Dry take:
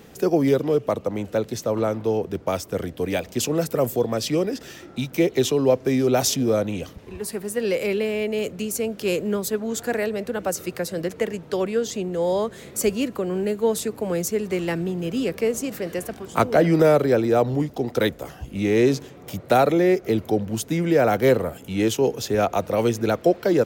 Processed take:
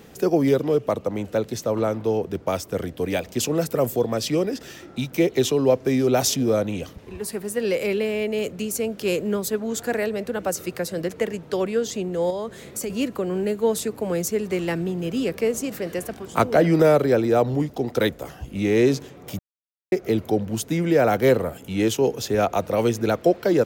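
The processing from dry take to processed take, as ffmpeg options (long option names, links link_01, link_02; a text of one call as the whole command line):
ffmpeg -i in.wav -filter_complex "[0:a]asettb=1/sr,asplit=3[link_01][link_02][link_03];[link_01]atrim=end=12.304[link_04];[link_02]atrim=start=12.3:end=12.9,asetpts=PTS-STARTPTS,afade=type=in:duration=0.004:curve=qsin,afade=type=out:start_time=0.596:duration=0.004:curve=qsin,acompressor=threshold=-25dB:ratio=6:attack=3.2:release=140:knee=1:detection=peak[link_05];[link_03]atrim=start=12.896[link_06];[link_04][link_05]acrossfade=duration=0.004:curve1=hsin:curve2=qsin[link_07];[link_07][link_06]acrossfade=duration=0.004:curve1=qsin:curve2=hsin,asplit=3[link_08][link_09][link_10];[link_08]atrim=end=19.39,asetpts=PTS-STARTPTS,afade=type=out:start_time=19.386:duration=0.004:curve=hsin[link_11];[link_09]atrim=start=19.39:end=19.92,asetpts=PTS-STARTPTS,volume=0[link_12];[link_10]atrim=start=19.92,asetpts=PTS-STARTPTS,afade=type=in:duration=0.004:curve=hsin[link_13];[link_11][link_12][link_13]concat=n=3:v=0:a=1" out.wav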